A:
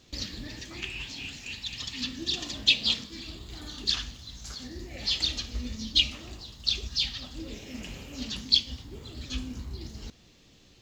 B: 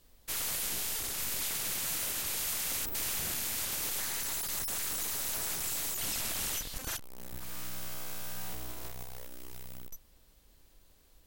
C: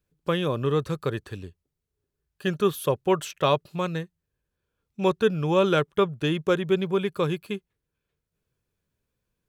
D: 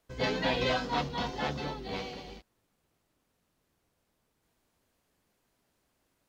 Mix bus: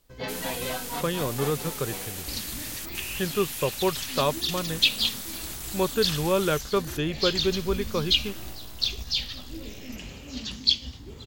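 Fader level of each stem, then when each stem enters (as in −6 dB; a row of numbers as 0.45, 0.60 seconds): +0.5, −2.5, −3.0, −3.5 decibels; 2.15, 0.00, 0.75, 0.00 seconds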